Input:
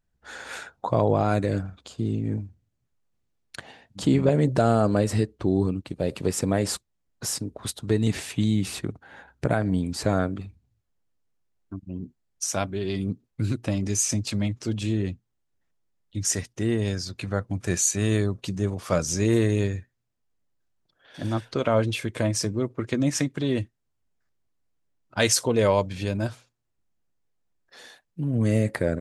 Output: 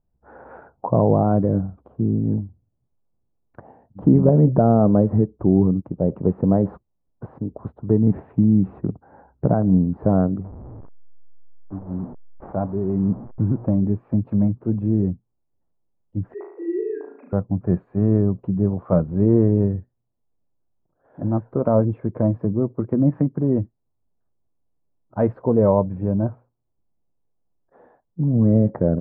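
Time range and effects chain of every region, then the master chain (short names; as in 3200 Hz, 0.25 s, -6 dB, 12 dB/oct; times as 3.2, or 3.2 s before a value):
10.44–13.66 delta modulation 32 kbps, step -34.5 dBFS + high shelf 4400 Hz -11.5 dB
16.34–17.33 sine-wave speech + HPF 410 Hz 24 dB/oct + flutter echo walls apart 6.2 m, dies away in 0.67 s
18.64–19.14 block floating point 7-bit + high shelf 4100 Hz +10.5 dB
whole clip: inverse Chebyshev low-pass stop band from 5600 Hz, stop band 80 dB; dynamic EQ 180 Hz, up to +7 dB, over -38 dBFS, Q 1.9; gain +3.5 dB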